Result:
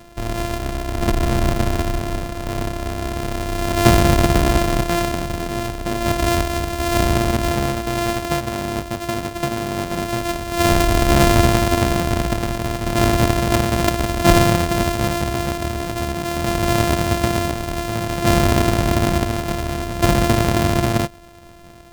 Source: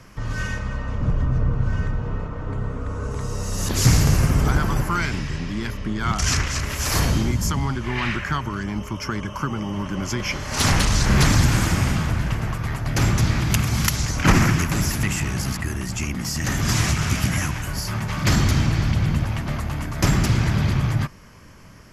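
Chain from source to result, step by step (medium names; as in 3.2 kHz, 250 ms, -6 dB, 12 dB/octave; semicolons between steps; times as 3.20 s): sorted samples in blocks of 128 samples; peaking EQ 670 Hz +5.5 dB 0.28 oct; trim +2 dB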